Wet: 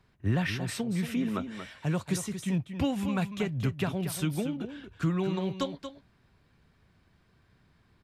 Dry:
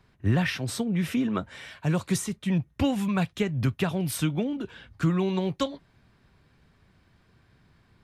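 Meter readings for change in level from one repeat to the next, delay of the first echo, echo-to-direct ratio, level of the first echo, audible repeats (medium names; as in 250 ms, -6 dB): no regular repeats, 232 ms, -9.5 dB, -9.5 dB, 1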